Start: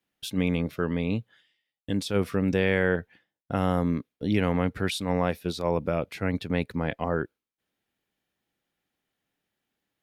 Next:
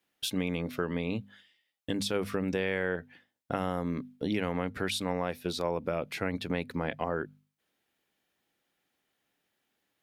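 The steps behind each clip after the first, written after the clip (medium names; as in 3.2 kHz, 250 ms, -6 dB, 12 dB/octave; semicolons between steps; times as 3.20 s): bass shelf 170 Hz -8 dB; hum notches 50/100/150/200/250 Hz; compression 3:1, threshold -33 dBFS, peak gain reduction 10 dB; trim +4 dB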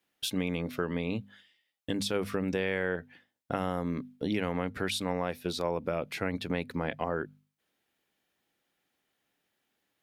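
no audible change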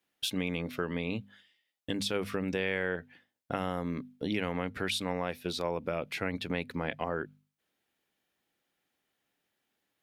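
dynamic bell 2.7 kHz, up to +4 dB, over -49 dBFS, Q 1; trim -2 dB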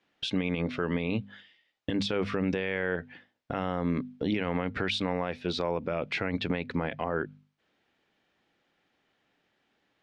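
in parallel at +0.5 dB: compression, threshold -39 dBFS, peak gain reduction 12.5 dB; on the sum: peak limiter -21 dBFS, peak gain reduction 8.5 dB; Gaussian low-pass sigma 1.7 samples; trim +3.5 dB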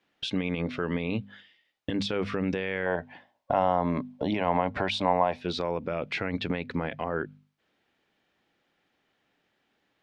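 time-frequency box 2.86–5.40 s, 550–1100 Hz +12 dB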